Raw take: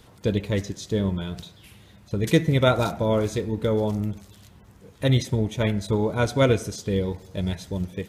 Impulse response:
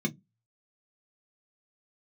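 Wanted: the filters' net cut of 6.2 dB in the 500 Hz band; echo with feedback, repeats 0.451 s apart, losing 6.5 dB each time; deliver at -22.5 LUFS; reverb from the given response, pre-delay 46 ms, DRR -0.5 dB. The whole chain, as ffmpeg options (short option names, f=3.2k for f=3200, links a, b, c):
-filter_complex "[0:a]equalizer=f=500:t=o:g=-7.5,aecho=1:1:451|902|1353|1804|2255|2706:0.473|0.222|0.105|0.0491|0.0231|0.0109,asplit=2[a][b];[1:a]atrim=start_sample=2205,adelay=46[c];[b][c]afir=irnorm=-1:irlink=0,volume=-5dB[d];[a][d]amix=inputs=2:normalize=0,volume=-9dB"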